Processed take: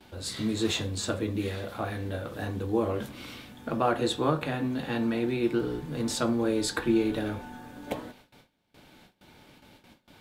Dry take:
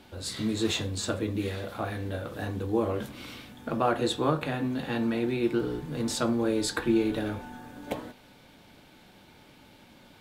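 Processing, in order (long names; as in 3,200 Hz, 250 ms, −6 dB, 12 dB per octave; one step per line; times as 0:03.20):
noise gate with hold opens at −44 dBFS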